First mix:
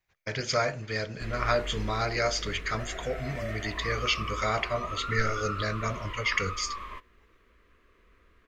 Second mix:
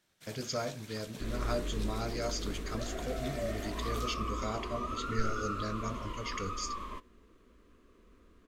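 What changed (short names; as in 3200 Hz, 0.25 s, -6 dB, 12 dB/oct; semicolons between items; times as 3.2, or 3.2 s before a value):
speech -8.5 dB; first sound: unmuted; master: add graphic EQ 250/2000/8000 Hz +9/-9/+5 dB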